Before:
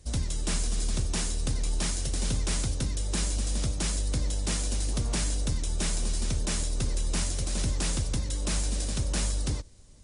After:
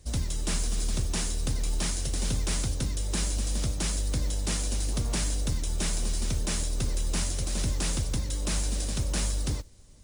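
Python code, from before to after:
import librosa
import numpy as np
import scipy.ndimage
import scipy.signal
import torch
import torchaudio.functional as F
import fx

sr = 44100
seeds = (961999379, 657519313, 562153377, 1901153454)

y = fx.mod_noise(x, sr, seeds[0], snr_db=27)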